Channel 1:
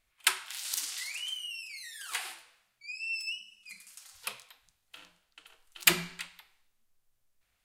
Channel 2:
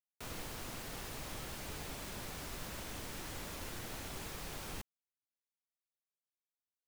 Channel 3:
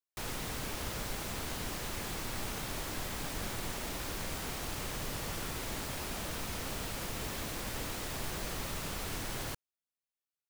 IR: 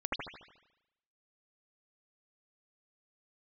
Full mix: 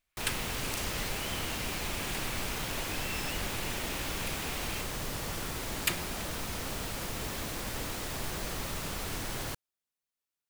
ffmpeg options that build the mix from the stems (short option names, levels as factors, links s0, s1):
-filter_complex "[0:a]volume=0.398[s0];[1:a]equalizer=f=2600:t=o:w=1.1:g=10.5,volume=1.19[s1];[2:a]volume=1.26[s2];[s0][s1][s2]amix=inputs=3:normalize=0"